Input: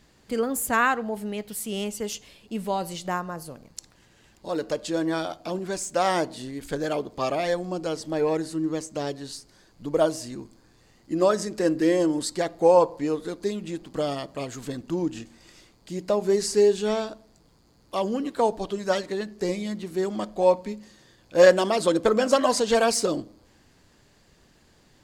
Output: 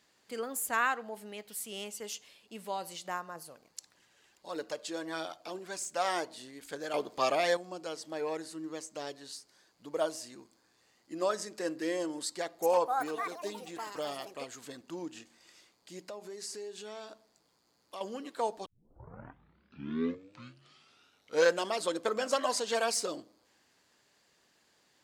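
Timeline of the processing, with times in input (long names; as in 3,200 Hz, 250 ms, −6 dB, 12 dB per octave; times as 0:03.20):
0:03.35–0:06.29: phase shifter 1.6 Hz, delay 2.9 ms, feedback 30%
0:06.94–0:07.57: clip gain +7 dB
0:12.24–0:14.96: delay with pitch and tempo change per echo 384 ms, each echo +7 semitones, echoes 2, each echo −6 dB
0:16.03–0:18.01: downward compressor 3 to 1, threshold −32 dBFS
0:18.66: tape start 3.03 s
whole clip: high-pass filter 730 Hz 6 dB per octave; level −6 dB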